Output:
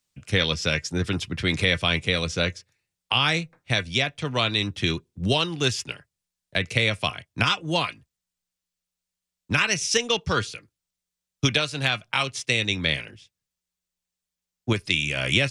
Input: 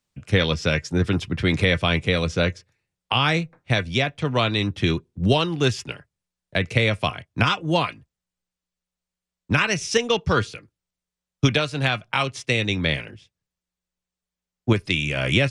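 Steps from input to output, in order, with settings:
high-shelf EQ 2,400 Hz +10 dB
level −5 dB

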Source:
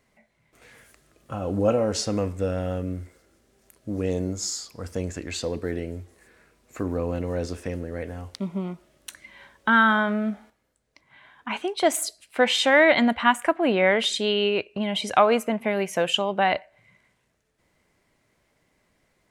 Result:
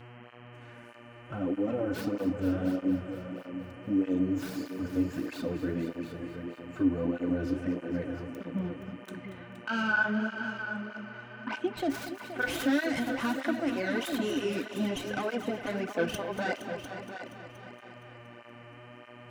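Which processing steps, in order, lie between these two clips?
stylus tracing distortion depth 0.35 ms
low-pass filter 3,300 Hz 6 dB per octave
brickwall limiter −17.5 dBFS, peak gain reduction 12 dB
reversed playback
upward compression, threshold −48 dBFS
reversed playback
tuned comb filter 170 Hz, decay 0.24 s, mix 50%
hollow resonant body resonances 280/1,500 Hz, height 16 dB, ringing for 95 ms
hum with harmonics 120 Hz, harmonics 26, −47 dBFS −4 dB per octave
echo machine with several playback heads 235 ms, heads all three, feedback 41%, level −12 dB
through-zero flanger with one copy inverted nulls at 1.6 Hz, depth 5.3 ms

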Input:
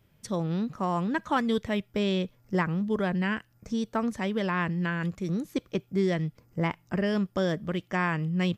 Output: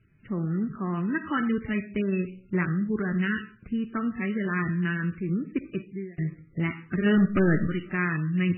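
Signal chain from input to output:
0:07.06–0:07.67: leveller curve on the samples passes 3
flat-topped bell 700 Hz −13.5 dB 1.3 octaves
convolution reverb RT60 0.45 s, pre-delay 10 ms, DRR 10.5 dB
0:05.61–0:06.18: fade out
level +2 dB
MP3 8 kbit/s 12,000 Hz

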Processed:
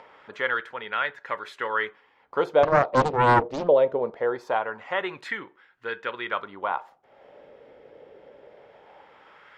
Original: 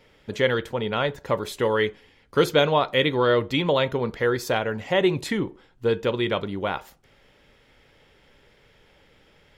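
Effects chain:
upward compression, threshold −36 dBFS
LFO wah 0.22 Hz 500–1,700 Hz, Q 2.4
0:02.63–0:03.68: highs frequency-modulated by the lows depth 0.87 ms
level +5.5 dB

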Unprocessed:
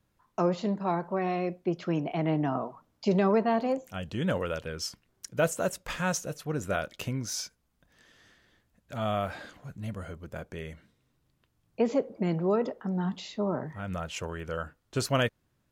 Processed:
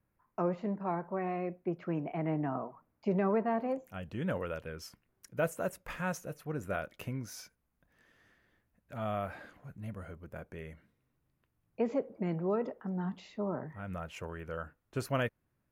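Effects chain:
flat-topped bell 5,100 Hz −16 dB, from 0:03.69 −8.5 dB
level −5.5 dB

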